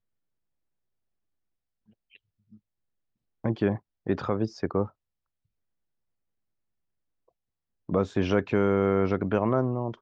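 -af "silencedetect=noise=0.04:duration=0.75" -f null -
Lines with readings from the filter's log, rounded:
silence_start: 0.00
silence_end: 3.44 | silence_duration: 3.44
silence_start: 4.84
silence_end: 7.89 | silence_duration: 3.05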